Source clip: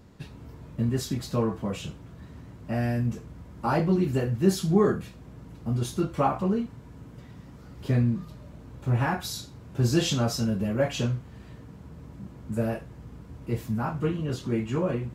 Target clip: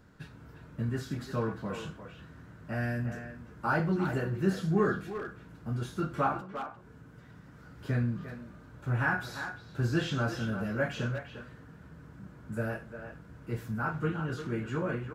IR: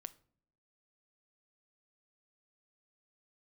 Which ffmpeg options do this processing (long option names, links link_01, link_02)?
-filter_complex "[0:a]acrossover=split=3700[link_01][link_02];[link_02]acompressor=threshold=-44dB:ratio=4:attack=1:release=60[link_03];[link_01][link_03]amix=inputs=2:normalize=0,equalizer=frequency=1500:width=3.1:gain=13,asettb=1/sr,asplit=3[link_04][link_05][link_06];[link_04]atrim=end=6.404[link_07];[link_05]atrim=start=6.4:end=7.56,asetpts=PTS-STARTPTS,afade=type=in:duration=0.004:curve=qsin,afade=type=out:start_time=1.156:duration=0.004:curve=qsin,acompressor=threshold=-41dB:ratio=5[link_08];[link_06]atrim=start=7.556[link_09];[link_07][link_08]acrossfade=duration=0.004:curve1=hsin:curve2=qsin[link_10];[link_10][link_09]acrossfade=duration=0.004:curve1=qsin:curve2=hsin,asplit=2[link_11][link_12];[link_12]adelay=350,highpass=300,lowpass=3400,asoftclip=type=hard:threshold=-17dB,volume=-8dB[link_13];[link_11][link_13]amix=inputs=2:normalize=0[link_14];[1:a]atrim=start_sample=2205[link_15];[link_14][link_15]afir=irnorm=-1:irlink=0,volume=-1.5dB"